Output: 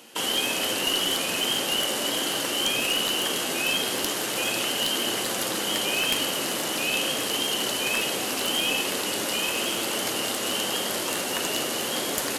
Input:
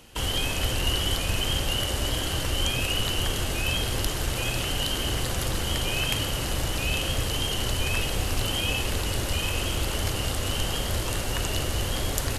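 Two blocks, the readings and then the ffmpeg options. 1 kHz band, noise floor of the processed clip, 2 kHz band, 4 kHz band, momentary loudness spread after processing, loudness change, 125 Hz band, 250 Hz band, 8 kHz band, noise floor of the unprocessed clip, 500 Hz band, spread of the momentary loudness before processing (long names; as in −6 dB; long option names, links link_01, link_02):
+3.0 dB, −29 dBFS, +3.0 dB, +3.5 dB, 3 LU, +2.5 dB, −16.0 dB, +1.5 dB, +4.0 dB, −30 dBFS, +3.0 dB, 3 LU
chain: -af "highpass=frequency=210:width=0.5412,highpass=frequency=210:width=1.3066,highshelf=frequency=6900:gain=2.5,acontrast=21,aeval=exprs='clip(val(0),-1,0.126)':channel_layout=same,flanger=delay=8.7:depth=5.2:regen=-61:speed=0.2:shape=sinusoidal,volume=2.5dB"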